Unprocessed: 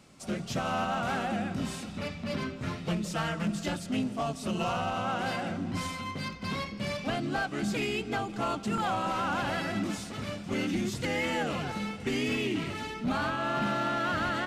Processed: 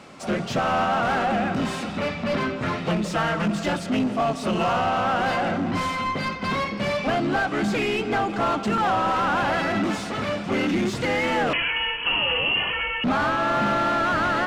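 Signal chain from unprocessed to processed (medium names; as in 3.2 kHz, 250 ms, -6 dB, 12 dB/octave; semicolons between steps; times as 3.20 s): overdrive pedal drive 17 dB, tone 1.3 kHz, clips at -23 dBFS; 11.53–13.04 s: frequency inversion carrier 3.1 kHz; trim +8 dB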